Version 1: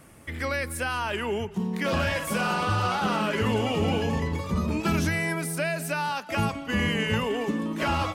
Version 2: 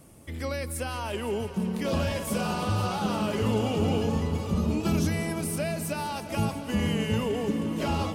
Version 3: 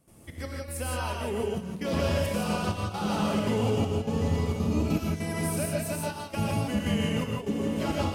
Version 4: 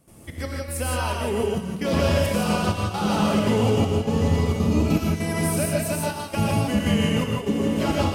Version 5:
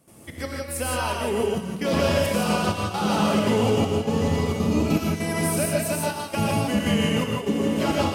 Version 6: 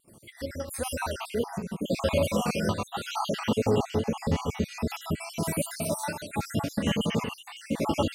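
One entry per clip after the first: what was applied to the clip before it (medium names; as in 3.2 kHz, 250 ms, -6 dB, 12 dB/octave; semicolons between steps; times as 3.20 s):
peaking EQ 1.7 kHz -11 dB 1.4 oct; multi-head delay 172 ms, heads all three, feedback 74%, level -19 dB
trance gate ".xxx.x...xxxxxx" 199 bpm -12 dB; gated-style reverb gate 190 ms rising, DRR -1 dB; trim -2.5 dB
thinning echo 115 ms, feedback 78%, level -17.5 dB; trim +6 dB
high-pass 150 Hz 6 dB/octave; trim +1 dB
random holes in the spectrogram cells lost 57%; vibrato 2.3 Hz 28 cents; trim -2 dB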